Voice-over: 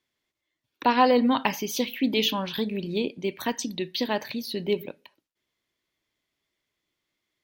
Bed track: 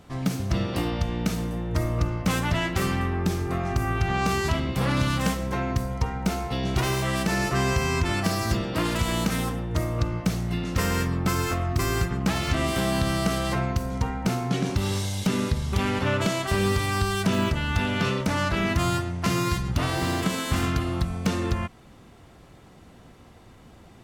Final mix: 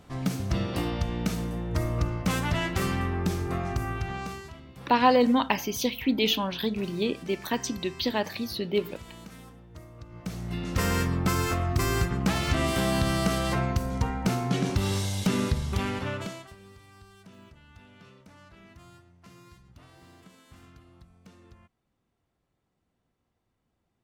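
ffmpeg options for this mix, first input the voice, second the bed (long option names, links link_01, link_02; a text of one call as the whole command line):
ffmpeg -i stem1.wav -i stem2.wav -filter_complex "[0:a]adelay=4050,volume=-0.5dB[link_01];[1:a]volume=17dB,afade=type=out:start_time=3.56:duration=0.94:silence=0.125893,afade=type=in:start_time=10.08:duration=0.8:silence=0.105925,afade=type=out:start_time=15.48:duration=1.07:silence=0.0446684[link_02];[link_01][link_02]amix=inputs=2:normalize=0" out.wav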